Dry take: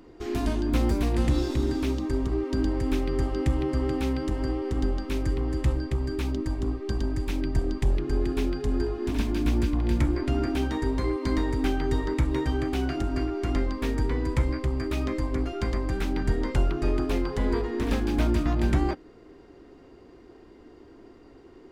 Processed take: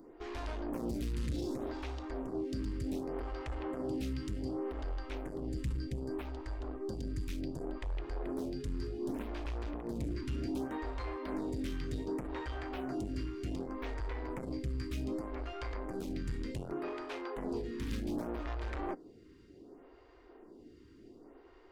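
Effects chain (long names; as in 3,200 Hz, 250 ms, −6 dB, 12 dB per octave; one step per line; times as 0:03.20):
0:16.71–0:17.35: high-pass filter 100 Hz → 320 Hz 24 dB per octave
soft clipping −27 dBFS, distortion −9 dB
phaser with staggered stages 0.66 Hz
level −3 dB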